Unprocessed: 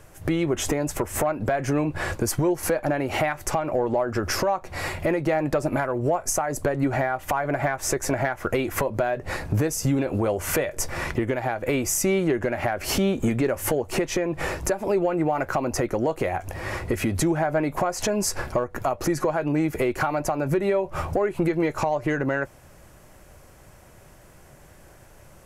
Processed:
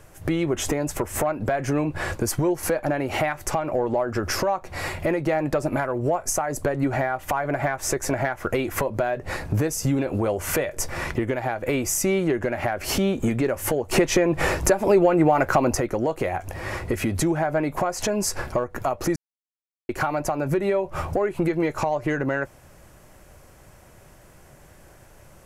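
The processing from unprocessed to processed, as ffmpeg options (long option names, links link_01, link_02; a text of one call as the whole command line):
ffmpeg -i in.wav -filter_complex "[0:a]asplit=5[link_01][link_02][link_03][link_04][link_05];[link_01]atrim=end=13.912[link_06];[link_02]atrim=start=13.908:end=15.752,asetpts=PTS-STARTPTS,volume=5.5dB[link_07];[link_03]atrim=start=15.748:end=19.16,asetpts=PTS-STARTPTS,afade=type=out:start_time=3.408:duration=0.004:curve=hsin[link_08];[link_04]atrim=start=19.16:end=19.89,asetpts=PTS-STARTPTS,volume=0[link_09];[link_05]atrim=start=19.89,asetpts=PTS-STARTPTS,afade=type=in:duration=0.004:curve=hsin[link_10];[link_06][link_07]acrossfade=duration=0.004:curve1=hsin:curve2=hsin[link_11];[link_08][link_09][link_10]concat=n=3:v=0:a=1[link_12];[link_11][link_12]acrossfade=duration=0.004:curve1=hsin:curve2=hsin" out.wav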